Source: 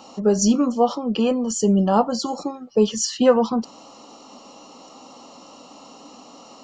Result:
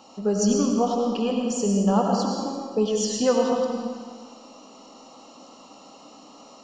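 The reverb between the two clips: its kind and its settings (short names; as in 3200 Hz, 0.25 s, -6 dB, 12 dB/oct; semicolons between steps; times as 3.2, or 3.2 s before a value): digital reverb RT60 1.7 s, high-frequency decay 0.9×, pre-delay 55 ms, DRR 0 dB; gain -6 dB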